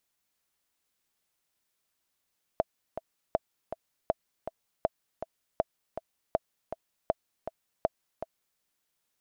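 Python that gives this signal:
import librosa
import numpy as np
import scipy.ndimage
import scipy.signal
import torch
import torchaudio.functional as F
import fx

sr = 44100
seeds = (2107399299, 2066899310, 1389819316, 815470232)

y = fx.click_track(sr, bpm=160, beats=2, bars=8, hz=652.0, accent_db=10.5, level_db=-11.5)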